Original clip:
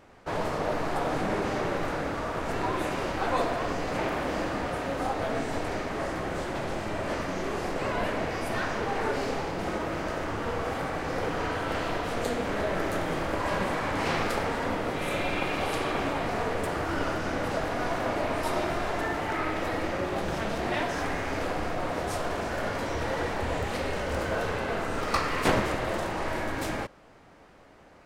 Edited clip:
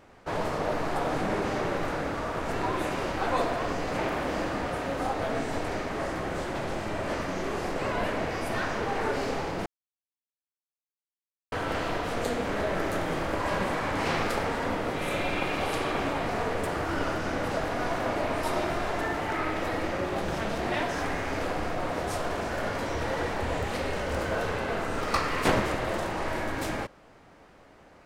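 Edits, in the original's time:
9.66–11.52 mute

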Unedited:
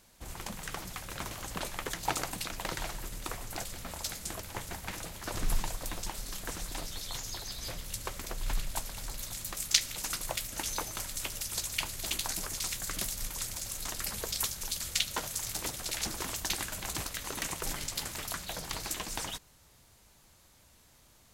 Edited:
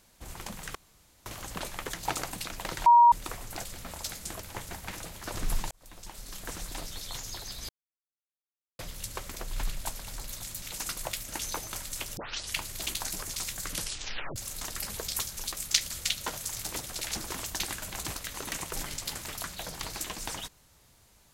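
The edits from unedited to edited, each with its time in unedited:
0.75–1.26 room tone
2.86–3.12 bleep 949 Hz -13.5 dBFS
5.71–6.53 fade in
7.69 insert silence 1.10 s
9.52–9.86 move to 14.76
11.41 tape start 0.39 s
12.94 tape stop 0.66 s

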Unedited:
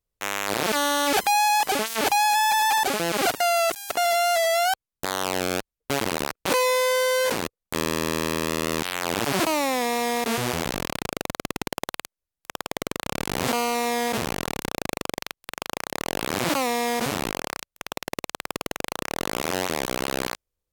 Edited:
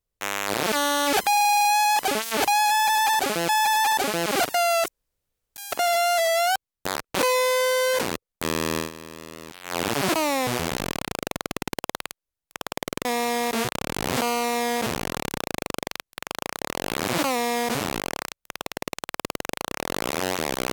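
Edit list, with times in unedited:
1.29 stutter 0.04 s, 10 plays
2.35–3.13 loop, 2 plays
3.74 insert room tone 0.68 s
5.13–6.26 cut
8.09–9.07 dip -14.5 dB, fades 0.13 s
9.78–10.41 move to 12.99

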